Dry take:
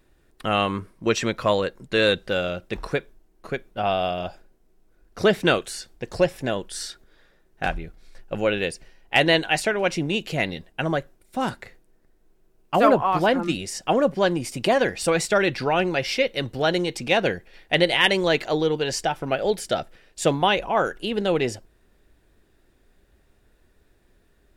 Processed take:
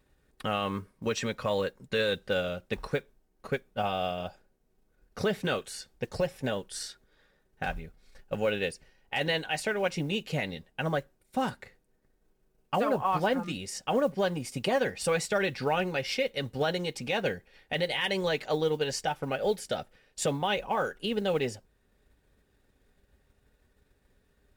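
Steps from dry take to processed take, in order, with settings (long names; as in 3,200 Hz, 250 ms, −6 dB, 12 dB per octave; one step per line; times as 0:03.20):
transient designer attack +4 dB, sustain −2 dB
brickwall limiter −12.5 dBFS, peak gain reduction 11.5 dB
notch comb filter 340 Hz
noise that follows the level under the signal 33 dB
level −4.5 dB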